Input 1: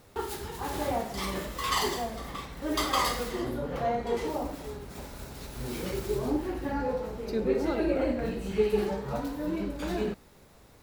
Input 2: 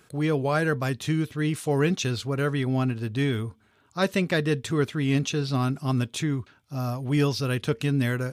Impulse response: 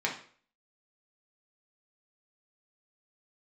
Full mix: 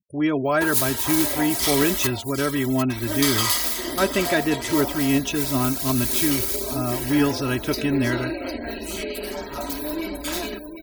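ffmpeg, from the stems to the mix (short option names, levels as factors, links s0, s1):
-filter_complex "[0:a]alimiter=level_in=1.06:limit=0.0631:level=0:latency=1:release=234,volume=0.944,tremolo=f=170:d=0.71,crystalizer=i=8:c=0,adelay=450,volume=1.19,asplit=3[s0][s1][s2];[s0]atrim=end=2.07,asetpts=PTS-STARTPTS,afade=t=out:st=2.066:d=0.004:c=hsin[s3];[s1]atrim=start=2.07:end=2.9,asetpts=PTS-STARTPTS,volume=0[s4];[s2]atrim=start=2.9,asetpts=PTS-STARTPTS,afade=t=in:d=0.004:c=hsin[s5];[s3][s4][s5]concat=n=3:v=0:a=1,asplit=3[s6][s7][s8];[s7]volume=0.178[s9];[s8]volume=0.398[s10];[1:a]lowpass=12000,equalizer=f=4400:t=o:w=0.37:g=-7,volume=1.26[s11];[2:a]atrim=start_sample=2205[s12];[s9][s12]afir=irnorm=-1:irlink=0[s13];[s10]aecho=0:1:754|1508|2262|3016|3770|4524:1|0.43|0.185|0.0795|0.0342|0.0147[s14];[s6][s11][s13][s14]amix=inputs=4:normalize=0,afftfilt=real='re*gte(hypot(re,im),0.0112)':imag='im*gte(hypot(re,im),0.0112)':win_size=1024:overlap=0.75,aecho=1:1:3.1:0.68"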